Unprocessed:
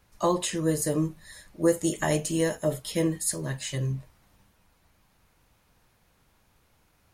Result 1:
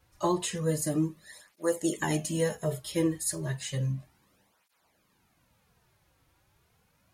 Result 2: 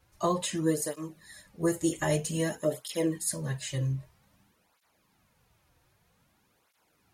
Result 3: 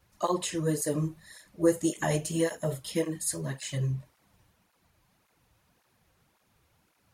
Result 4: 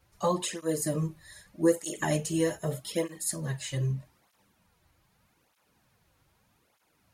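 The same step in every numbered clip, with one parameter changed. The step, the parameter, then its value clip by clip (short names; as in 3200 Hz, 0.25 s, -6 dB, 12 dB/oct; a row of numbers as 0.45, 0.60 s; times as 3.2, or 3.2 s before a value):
tape flanging out of phase, nulls at: 0.32, 0.52, 1.8, 0.81 Hz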